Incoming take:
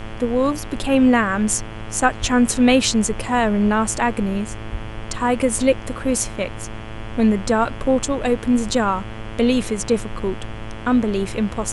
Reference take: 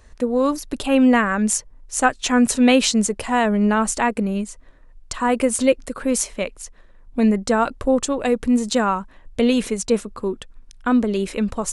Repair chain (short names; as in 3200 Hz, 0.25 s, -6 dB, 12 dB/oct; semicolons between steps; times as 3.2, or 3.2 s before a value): de-hum 110 Hz, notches 31; de-plosive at 2.2/4.71; noise print and reduce 14 dB